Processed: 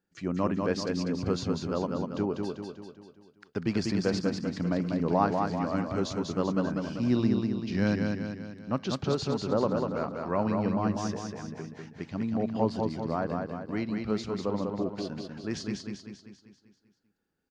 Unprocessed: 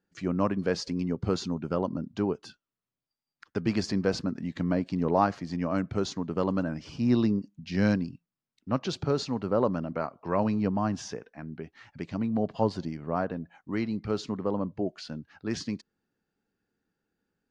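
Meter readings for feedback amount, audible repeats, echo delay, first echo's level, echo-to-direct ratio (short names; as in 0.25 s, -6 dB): 51%, 6, 0.195 s, -4.0 dB, -2.5 dB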